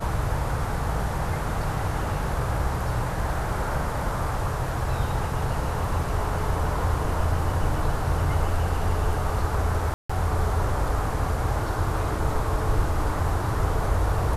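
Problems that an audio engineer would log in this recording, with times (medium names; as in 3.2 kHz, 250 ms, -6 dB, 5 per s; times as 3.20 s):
9.94–10.10 s: dropout 155 ms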